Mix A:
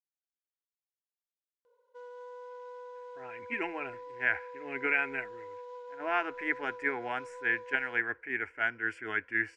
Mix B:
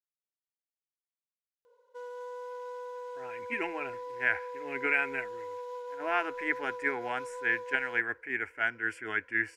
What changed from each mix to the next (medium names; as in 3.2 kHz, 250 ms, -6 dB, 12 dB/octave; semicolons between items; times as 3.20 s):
background +4.5 dB; master: remove distance through air 74 m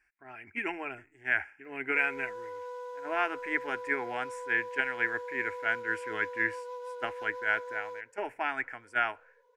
speech: entry -2.95 s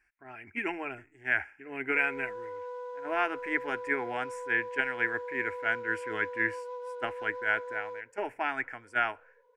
background: add treble shelf 4.1 kHz -11 dB; master: add bass shelf 460 Hz +3.5 dB